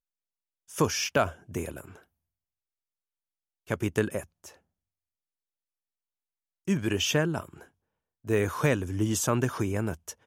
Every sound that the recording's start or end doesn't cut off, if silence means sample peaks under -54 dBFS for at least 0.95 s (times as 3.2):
3.67–4.57